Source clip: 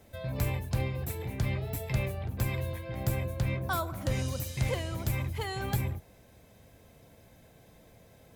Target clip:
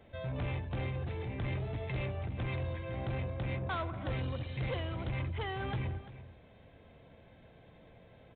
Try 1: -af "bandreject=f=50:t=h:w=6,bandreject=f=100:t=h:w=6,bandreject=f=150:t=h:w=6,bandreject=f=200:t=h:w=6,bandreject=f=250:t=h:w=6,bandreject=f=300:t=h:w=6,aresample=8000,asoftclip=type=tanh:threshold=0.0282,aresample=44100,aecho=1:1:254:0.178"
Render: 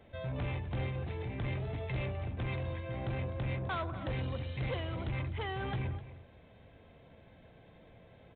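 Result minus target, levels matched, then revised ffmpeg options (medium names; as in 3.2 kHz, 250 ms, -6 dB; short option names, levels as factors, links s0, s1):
echo 89 ms early
-af "bandreject=f=50:t=h:w=6,bandreject=f=100:t=h:w=6,bandreject=f=150:t=h:w=6,bandreject=f=200:t=h:w=6,bandreject=f=250:t=h:w=6,bandreject=f=300:t=h:w=6,aresample=8000,asoftclip=type=tanh:threshold=0.0282,aresample=44100,aecho=1:1:343:0.178"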